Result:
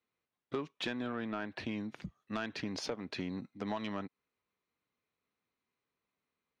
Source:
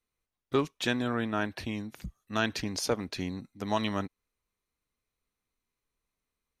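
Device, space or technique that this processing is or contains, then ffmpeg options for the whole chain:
AM radio: -af "highpass=140,lowpass=3500,acompressor=threshold=0.02:ratio=6,asoftclip=type=tanh:threshold=0.0447,volume=1.19"

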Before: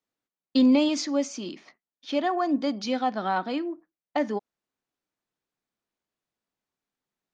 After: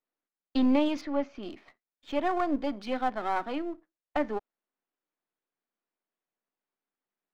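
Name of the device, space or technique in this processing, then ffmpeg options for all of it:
crystal radio: -filter_complex "[0:a]highpass=240,lowpass=2600,aeval=exprs='if(lt(val(0),0),0.447*val(0),val(0))':c=same,asettb=1/sr,asplit=3[s0][s1][s2];[s0]atrim=end=1.014[s3];[s1]atrim=start=1.01:end=1.43,asetpts=PTS-STARTPTS,afade=t=in:d=0.004:c=qsin,afade=t=out:st=0.416:d=0.004:c=qsin,lowpass=3400[s4];[s2]atrim=start=1.426[s5];[s3][s4]acrossfade=d=0.004:c1=hsin:c2=qsin[s6];[s6][s5]acrossfade=d=0.004:c1=qsin:c2=hsin"

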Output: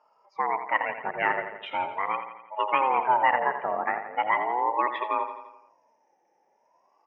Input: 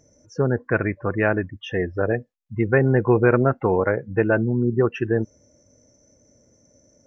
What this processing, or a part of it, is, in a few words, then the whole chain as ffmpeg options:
voice changer toy: -filter_complex "[0:a]aeval=exprs='val(0)*sin(2*PI*500*n/s+500*0.5/0.4*sin(2*PI*0.4*n/s))':c=same,lowpass=5400,highpass=540,equalizer=f=590:t=q:w=4:g=3,equalizer=f=920:t=q:w=4:g=8,equalizer=f=1900:t=q:w=4:g=9,equalizer=f=2900:t=q:w=4:g=7,lowpass=f=4100:w=0.5412,lowpass=f=4100:w=1.3066,asettb=1/sr,asplit=3[s0][s1][s2];[s0]atrim=end=0.894[s3];[s1]atrim=start=0.89:end=1.94,asetpts=PTS-STARTPTS,afade=t=in:d=0.004:c=qsin,afade=t=out:st=1.046:d=0.004:c=qsin,equalizer=f=110:w=0.69:g=11.5[s4];[s2]atrim=start=1.936[s5];[s3][s4]acrossfade=d=0.004:c1=hsin:c2=qsin[s6];[s6][s5]acrossfade=d=0.004:c1=qsin:c2=hsin,aecho=1:1:85|170|255|340|425|510:0.335|0.181|0.0977|0.0527|0.0285|0.0154,volume=0.531"

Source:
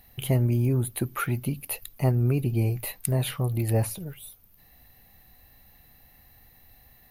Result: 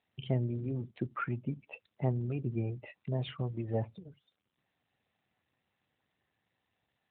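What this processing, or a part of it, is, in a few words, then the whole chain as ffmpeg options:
mobile call with aggressive noise cancelling: -filter_complex "[0:a]asettb=1/sr,asplit=3[s0][s1][s2];[s0]atrim=end=3.204[s3];[s1]atrim=start=3.2:end=3.72,asetpts=PTS-STARTPTS,afade=t=in:d=0.004:c=qsin,afade=t=out:st=0.516:d=0.004:c=qsin,lowpass=8000[s4];[s2]atrim=start=3.716[s5];[s3][s4]acrossfade=d=0.004:c1=hsin:c2=qsin[s6];[s6][s5]acrossfade=d=0.004:c1=qsin:c2=hsin,highpass=110,afftdn=nr=21:nf=-38,volume=0.501" -ar 8000 -c:a libopencore_amrnb -b:a 12200

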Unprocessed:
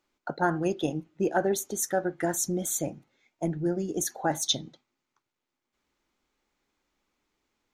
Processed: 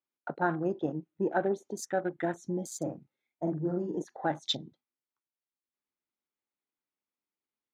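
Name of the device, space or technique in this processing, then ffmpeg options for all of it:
over-cleaned archive recording: -filter_complex "[0:a]highpass=110,lowpass=5300,afwtdn=0.00891,asettb=1/sr,asplit=3[s0][s1][s2];[s0]atrim=end=2.774[s3];[s1]atrim=start=2.77:end=4.02,asetpts=PTS-STARTPTS,afade=t=in:d=0.004:c=qsin,afade=t=out:st=1.246:d=0.004:c=qsin,asplit=2[s4][s5];[s5]adelay=45,volume=0.631[s6];[s4][s6]amix=inputs=2:normalize=0,atrim=end_sample=55125[s7];[s2]atrim=start=4.016[s8];[s3][s7]acrossfade=d=0.004:c1=hsin:c2=qsin[s9];[s9][s8]acrossfade=d=0.004:c1=qsin:c2=hsin,volume=0.708"

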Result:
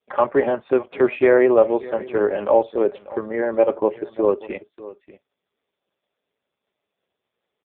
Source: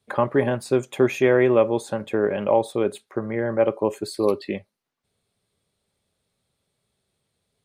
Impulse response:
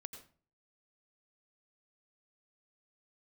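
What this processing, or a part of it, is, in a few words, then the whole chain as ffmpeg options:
satellite phone: -af "highpass=330,lowpass=3300,aecho=1:1:591:0.126,volume=1.78" -ar 8000 -c:a libopencore_amrnb -b:a 4750

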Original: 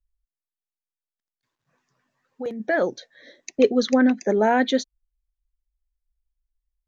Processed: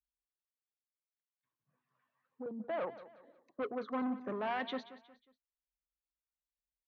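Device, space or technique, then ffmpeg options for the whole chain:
guitar amplifier with harmonic tremolo: -filter_complex "[0:a]bandreject=f=60:t=h:w=6,bandreject=f=120:t=h:w=6,asettb=1/sr,asplit=3[s0][s1][s2];[s0]atrim=end=2.424[s3];[s1]atrim=start=2.42:end=4.22,asetpts=PTS-STARTPTS,afade=t=in:d=0.004:c=qsin,afade=t=out:st=1.796:d=0.004:c=qsin,highshelf=f=1600:t=q:w=3:g=-12.5[s4];[s2]atrim=start=4.216[s5];[s3][s4]acrossfade=d=0.004:c1=hsin:c2=qsin[s6];[s6][s5]acrossfade=d=0.004:c1=qsin:c2=hsin,acrossover=split=500[s7][s8];[s7]aeval=exprs='val(0)*(1-0.7/2+0.7/2*cos(2*PI*1.2*n/s))':c=same[s9];[s8]aeval=exprs='val(0)*(1-0.7/2-0.7/2*cos(2*PI*1.2*n/s))':c=same[s10];[s9][s10]amix=inputs=2:normalize=0,asoftclip=type=tanh:threshold=0.0668,highpass=87,equalizer=f=130:t=q:w=4:g=4,equalizer=f=380:t=q:w=4:g=-5,equalizer=f=1100:t=q:w=4:g=6,lowpass=f=3500:w=0.5412,lowpass=f=3500:w=1.3066,aecho=1:1:181|362|543:0.168|0.0638|0.0242,volume=0.355"

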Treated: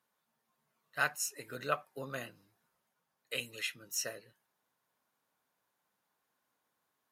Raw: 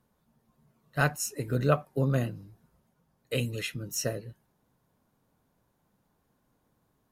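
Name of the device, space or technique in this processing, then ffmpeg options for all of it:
filter by subtraction: -filter_complex "[0:a]asplit=2[s0][s1];[s1]lowpass=1800,volume=-1[s2];[s0][s2]amix=inputs=2:normalize=0,volume=0.668"

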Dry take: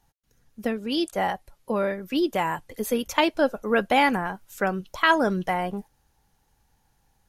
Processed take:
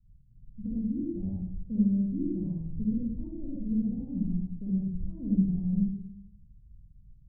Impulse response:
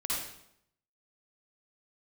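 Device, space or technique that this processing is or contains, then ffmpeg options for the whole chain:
club heard from the street: -filter_complex "[0:a]alimiter=limit=0.158:level=0:latency=1:release=309,lowpass=f=170:w=0.5412,lowpass=f=170:w=1.3066[s0];[1:a]atrim=start_sample=2205[s1];[s0][s1]afir=irnorm=-1:irlink=0,volume=2.66"

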